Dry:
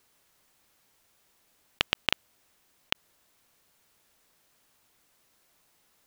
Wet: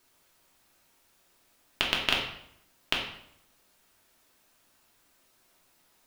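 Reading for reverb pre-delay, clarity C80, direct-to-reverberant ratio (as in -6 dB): 3 ms, 8.0 dB, -2.5 dB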